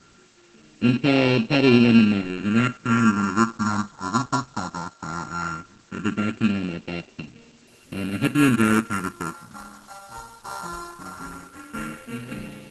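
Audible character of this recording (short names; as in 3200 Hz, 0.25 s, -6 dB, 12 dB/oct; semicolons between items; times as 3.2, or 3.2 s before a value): a buzz of ramps at a fixed pitch in blocks of 32 samples; phasing stages 4, 0.17 Hz, lowest notch 420–1200 Hz; a quantiser's noise floor 10-bit, dither triangular; Opus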